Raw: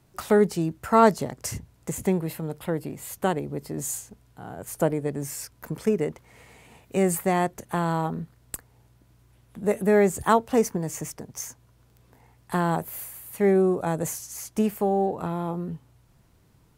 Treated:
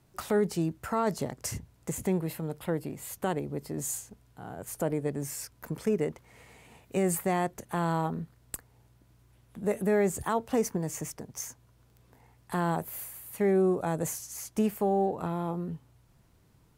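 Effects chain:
brickwall limiter −14 dBFS, peak gain reduction 10.5 dB
level −3 dB

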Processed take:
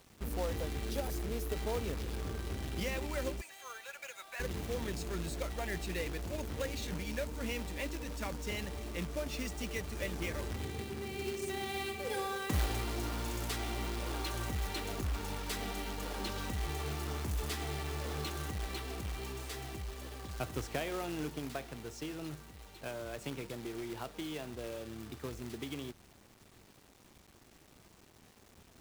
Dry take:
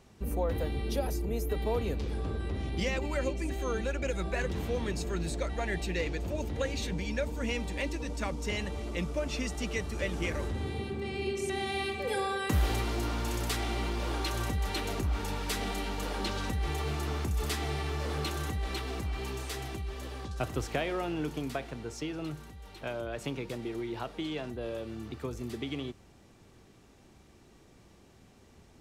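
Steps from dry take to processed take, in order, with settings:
0:03.41–0:04.40: Bessel high-pass filter 1,100 Hz, order 4
log-companded quantiser 4 bits
level −5.5 dB

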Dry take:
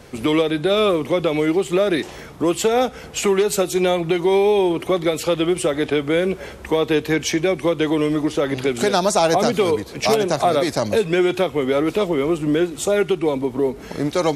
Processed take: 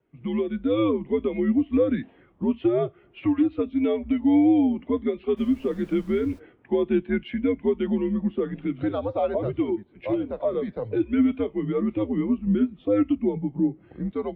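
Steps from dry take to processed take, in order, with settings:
automatic gain control gain up to 5 dB
single-sideband voice off tune −100 Hz 160–3,500 Hz
0:05.36–0:06.38: background noise pink −30 dBFS
flanger 0.3 Hz, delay 5.3 ms, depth 2.8 ms, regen −82%
every bin expanded away from the loudest bin 1.5 to 1
level −4 dB

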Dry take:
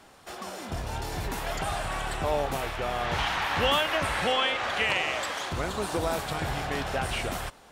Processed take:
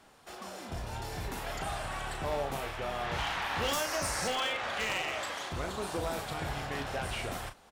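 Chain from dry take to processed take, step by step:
0:03.73–0:04.28: high shelf with overshoot 4,300 Hz +9 dB, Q 3
wave folding −19.5 dBFS
double-tracking delay 36 ms −8 dB
level −6 dB

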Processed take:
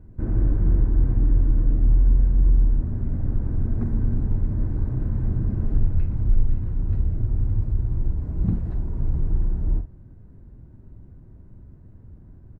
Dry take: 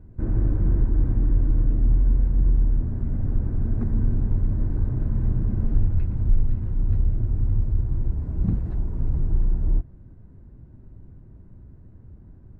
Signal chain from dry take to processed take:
double-tracking delay 47 ms −10 dB

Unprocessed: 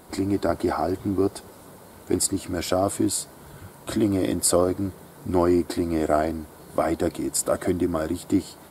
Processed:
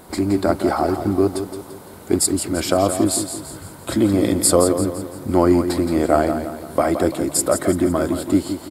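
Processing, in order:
repeating echo 170 ms, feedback 46%, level −9 dB
level +5 dB

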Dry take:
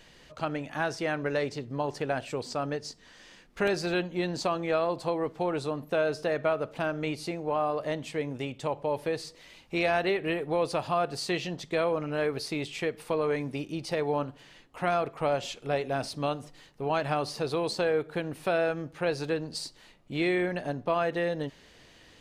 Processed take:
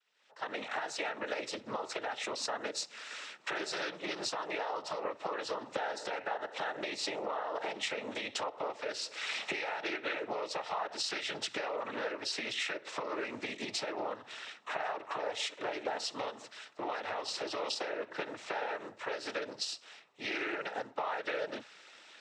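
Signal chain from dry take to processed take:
source passing by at 0:08.50, 10 m/s, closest 2.7 metres
camcorder AGC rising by 49 dB per second
Bessel high-pass filter 860 Hz, order 2
high-shelf EQ 4,600 Hz −6 dB
downward compressor, threshold −40 dBFS, peak gain reduction 9 dB
cochlear-implant simulation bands 12
highs frequency-modulated by the lows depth 0.14 ms
level +8 dB

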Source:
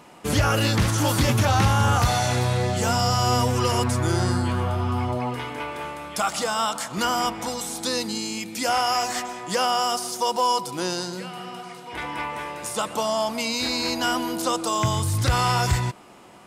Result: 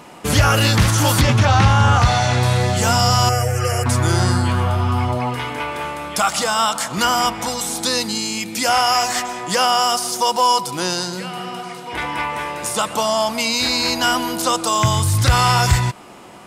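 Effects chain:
0:01.21–0:02.43: high-frequency loss of the air 83 metres
0:03.29–0:03.86: phaser with its sweep stopped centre 1,000 Hz, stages 6
dynamic equaliser 350 Hz, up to −5 dB, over −36 dBFS, Q 0.77
level +7.5 dB

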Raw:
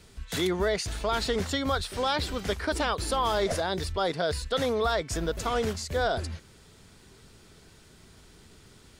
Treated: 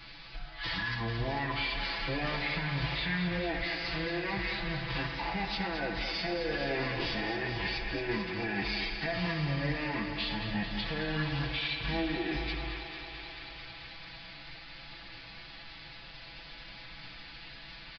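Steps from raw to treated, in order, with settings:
high-shelf EQ 3,200 Hz +11.5 dB
comb filter 3.9 ms, depth 88%
in parallel at +2 dB: downward compressor 6 to 1, threshold −38 dBFS, peak gain reduction 20 dB
on the sum: brickwall limiter −17 dBFS, peak gain reduction 11 dB
mains hum 60 Hz, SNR 32 dB
phase-vocoder pitch shift with formants kept +4.5 semitones
feedback echo with a high-pass in the loop 110 ms, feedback 84%, high-pass 570 Hz, level −8.5 dB
on a send at −6 dB: convolution reverb RT60 0.95 s, pre-delay 4 ms
on the sum: downsampling to 22,050 Hz
wrong playback speed 15 ips tape played at 7.5 ips
level −8 dB

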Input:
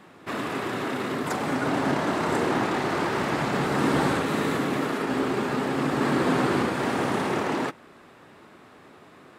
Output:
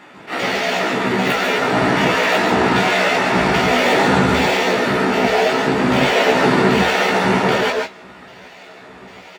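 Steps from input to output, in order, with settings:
pitch shifter gated in a rhythm +10 semitones, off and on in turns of 394 ms
tape wow and flutter 130 cents
in parallel at −5.5 dB: gain into a clipping stage and back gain 28 dB
on the sum: low-shelf EQ 130 Hz −12 dB
double-tracking delay 16 ms −3.5 dB
convolution reverb RT60 0.10 s, pre-delay 138 ms, DRR 3 dB
level that may rise only so fast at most 210 dB per second
level −1 dB

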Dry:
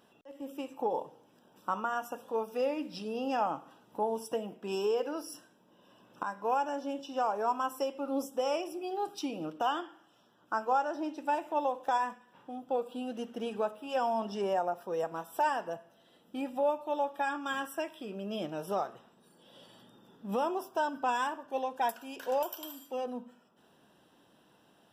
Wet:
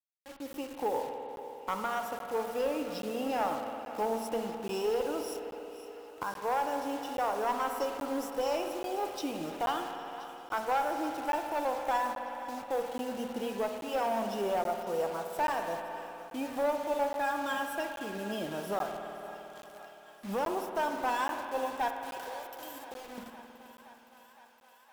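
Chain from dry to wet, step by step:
0:21.88–0:23.18: downward compressor 20 to 1, threshold −43 dBFS, peak gain reduction 17.5 dB
bit reduction 8 bits
asymmetric clip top −28 dBFS
feedback echo with a high-pass in the loop 514 ms, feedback 79%, high-pass 410 Hz, level −16 dB
on a send at −5 dB: convolution reverb RT60 3.4 s, pre-delay 53 ms
on the sum: regular buffer underruns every 0.83 s, samples 512, zero, from 0:00.53

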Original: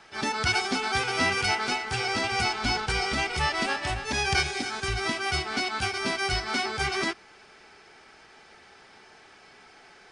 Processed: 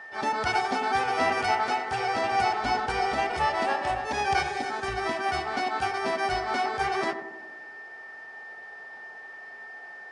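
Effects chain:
steady tone 1,800 Hz −38 dBFS
parametric band 720 Hz +15 dB 2.1 octaves
tape delay 94 ms, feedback 71%, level −7 dB, low-pass 1,000 Hz
level −9 dB

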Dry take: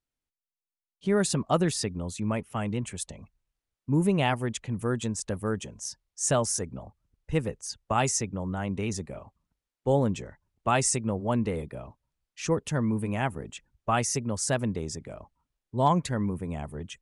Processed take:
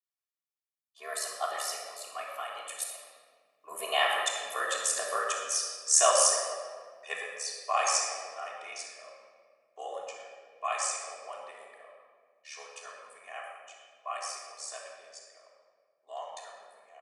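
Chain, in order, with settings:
source passing by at 0:05.34, 23 m/s, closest 24 metres
high-shelf EQ 9,300 Hz +3.5 dB
comb filter 1.7 ms, depth 93%
ring modulation 37 Hz
high-pass filter 720 Hz 24 dB per octave
rectangular room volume 2,500 cubic metres, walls mixed, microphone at 3.3 metres
level +4.5 dB

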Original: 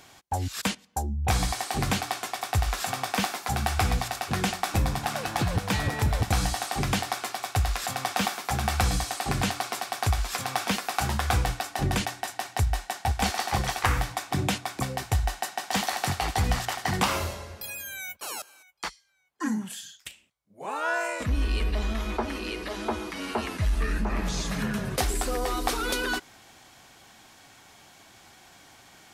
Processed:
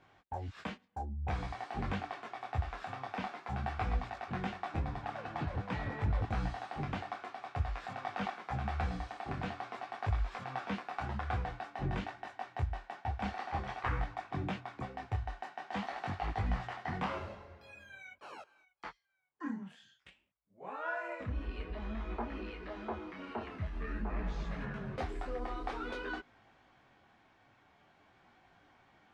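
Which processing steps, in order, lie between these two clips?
low-pass filter 2,100 Hz 12 dB per octave
micro pitch shift up and down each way 17 cents
level −6 dB

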